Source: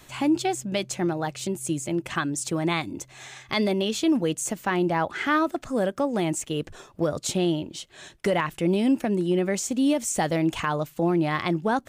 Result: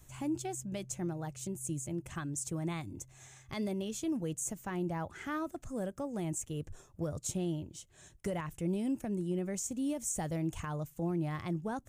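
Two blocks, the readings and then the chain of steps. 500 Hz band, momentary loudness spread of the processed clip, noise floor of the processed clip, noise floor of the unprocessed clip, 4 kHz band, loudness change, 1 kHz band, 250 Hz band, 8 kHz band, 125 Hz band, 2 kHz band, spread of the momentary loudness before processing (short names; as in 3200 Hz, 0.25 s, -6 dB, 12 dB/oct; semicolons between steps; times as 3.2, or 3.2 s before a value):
-13.5 dB, 7 LU, -62 dBFS, -53 dBFS, -17.5 dB, -11.5 dB, -15.0 dB, -11.5 dB, -7.0 dB, -7.0 dB, -17.0 dB, 7 LU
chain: EQ curve 100 Hz 0 dB, 240 Hz -12 dB, 4400 Hz -19 dB, 6500 Hz -7 dB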